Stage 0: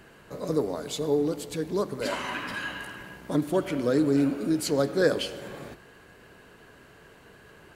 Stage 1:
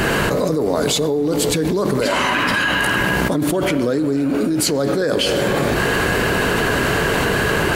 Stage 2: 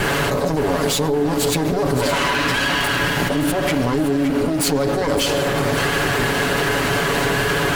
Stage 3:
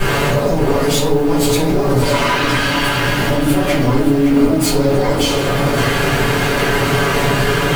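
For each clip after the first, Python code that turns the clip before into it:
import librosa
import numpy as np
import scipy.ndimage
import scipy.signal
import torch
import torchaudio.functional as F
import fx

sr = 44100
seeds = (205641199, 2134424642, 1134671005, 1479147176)

y1 = fx.env_flatten(x, sr, amount_pct=100)
y2 = fx.lower_of_two(y1, sr, delay_ms=7.1)
y2 = fx.echo_feedback(y2, sr, ms=566, feedback_pct=47, wet_db=-11.0)
y3 = fx.dmg_noise_colour(y2, sr, seeds[0], colour='blue', level_db=-47.0)
y3 = fx.room_shoebox(y3, sr, seeds[1], volume_m3=54.0, walls='mixed', distance_m=1.8)
y3 = y3 * 10.0 ** (-6.0 / 20.0)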